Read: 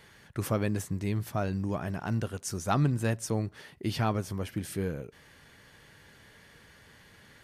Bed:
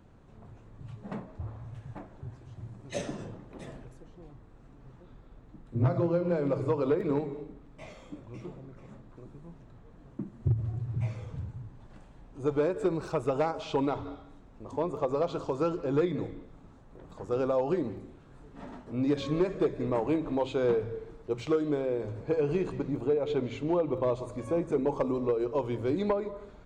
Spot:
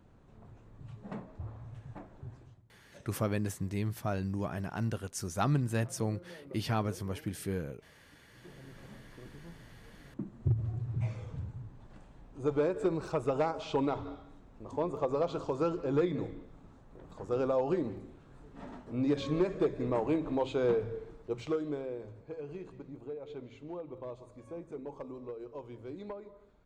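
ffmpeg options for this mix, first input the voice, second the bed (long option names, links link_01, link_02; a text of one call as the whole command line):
ffmpeg -i stem1.wav -i stem2.wav -filter_complex "[0:a]adelay=2700,volume=-3dB[link_01];[1:a]volume=17dB,afade=type=out:start_time=2.4:duration=0.22:silence=0.112202,afade=type=in:start_time=8.34:duration=0.45:silence=0.0944061,afade=type=out:start_time=20.97:duration=1.32:silence=0.237137[link_02];[link_01][link_02]amix=inputs=2:normalize=0" out.wav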